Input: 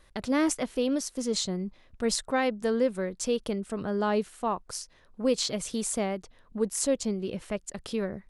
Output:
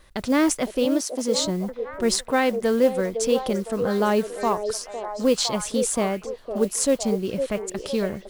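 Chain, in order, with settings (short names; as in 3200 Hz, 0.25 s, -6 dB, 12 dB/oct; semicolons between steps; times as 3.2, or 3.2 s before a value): 0.85–1.38 HPF 200 Hz; modulation noise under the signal 26 dB; delay with a stepping band-pass 0.508 s, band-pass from 480 Hz, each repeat 0.7 oct, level -4.5 dB; gain +5.5 dB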